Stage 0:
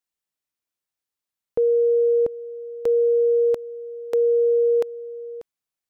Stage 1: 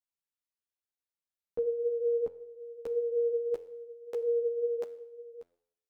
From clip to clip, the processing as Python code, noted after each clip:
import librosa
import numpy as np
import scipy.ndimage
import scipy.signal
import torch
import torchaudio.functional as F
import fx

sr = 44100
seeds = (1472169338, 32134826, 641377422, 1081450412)

y = fx.comb_fb(x, sr, f0_hz=86.0, decay_s=0.7, harmonics='all', damping=0.0, mix_pct=60)
y = fx.ensemble(y, sr)
y = y * 10.0 ** (-1.5 / 20.0)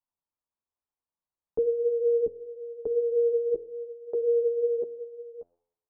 y = fx.low_shelf(x, sr, hz=260.0, db=7.5)
y = fx.envelope_lowpass(y, sr, base_hz=400.0, top_hz=1000.0, q=2.7, full_db=-33.0, direction='down')
y = y * 10.0 ** (-1.5 / 20.0)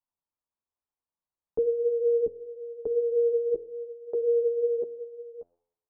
y = x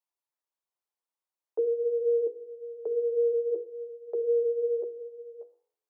y = scipy.signal.sosfilt(scipy.signal.ellip(4, 1.0, 40, 330.0, 'highpass', fs=sr, output='sos'), x)
y = fx.hum_notches(y, sr, base_hz=60, count=8)